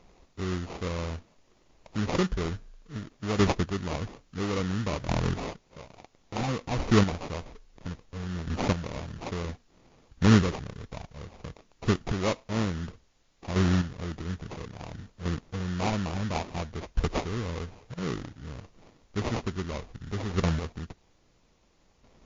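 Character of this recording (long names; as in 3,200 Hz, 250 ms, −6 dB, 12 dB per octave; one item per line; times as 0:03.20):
aliases and images of a low sample rate 1,600 Hz, jitter 20%
chopped level 0.59 Hz, depth 60%, duty 15%
a quantiser's noise floor 12 bits, dither triangular
MP3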